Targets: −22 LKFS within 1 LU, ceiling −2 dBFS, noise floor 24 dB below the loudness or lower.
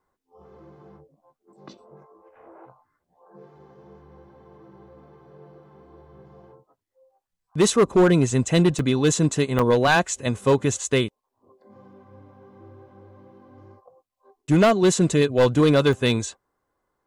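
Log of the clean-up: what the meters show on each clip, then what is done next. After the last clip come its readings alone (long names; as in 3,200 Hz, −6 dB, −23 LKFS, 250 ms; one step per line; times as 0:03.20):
share of clipped samples 0.9%; peaks flattened at −11.5 dBFS; number of dropouts 3; longest dropout 2.3 ms; integrated loudness −20.0 LKFS; sample peak −11.5 dBFS; target loudness −22.0 LKFS
→ clipped peaks rebuilt −11.5 dBFS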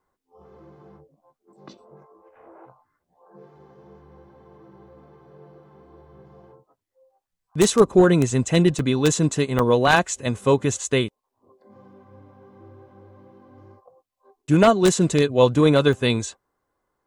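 share of clipped samples 0.0%; number of dropouts 3; longest dropout 2.3 ms
→ repair the gap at 0:08.79/0:09.59/0:15.93, 2.3 ms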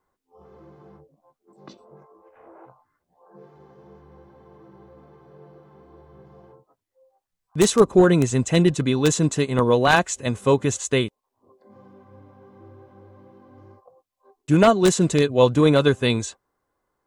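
number of dropouts 0; integrated loudness −19.0 LKFS; sample peak −2.5 dBFS; target loudness −22.0 LKFS
→ level −3 dB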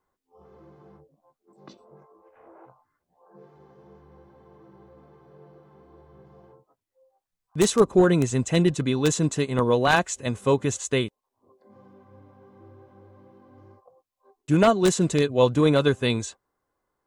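integrated loudness −22.0 LKFS; sample peak −5.5 dBFS; background noise floor −83 dBFS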